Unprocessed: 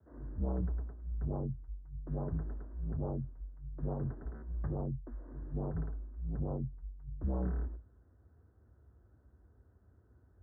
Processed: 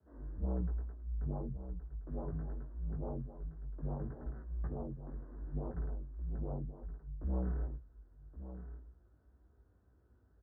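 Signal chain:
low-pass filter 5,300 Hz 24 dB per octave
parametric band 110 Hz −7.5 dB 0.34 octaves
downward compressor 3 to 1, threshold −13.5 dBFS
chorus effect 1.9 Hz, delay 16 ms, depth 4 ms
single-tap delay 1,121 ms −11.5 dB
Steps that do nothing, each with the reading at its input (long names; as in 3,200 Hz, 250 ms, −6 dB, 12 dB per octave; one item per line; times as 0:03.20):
low-pass filter 5,300 Hz: nothing at its input above 720 Hz
downward compressor, threshold −13.5 dBFS: peak of its input −24.5 dBFS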